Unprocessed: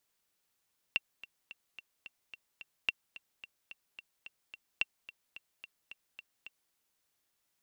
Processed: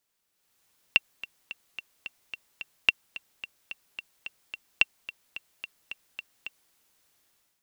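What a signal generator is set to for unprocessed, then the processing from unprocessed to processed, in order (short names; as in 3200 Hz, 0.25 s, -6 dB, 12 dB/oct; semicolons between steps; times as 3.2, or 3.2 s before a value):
metronome 218 bpm, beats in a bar 7, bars 3, 2730 Hz, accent 18.5 dB -15 dBFS
AGC gain up to 11 dB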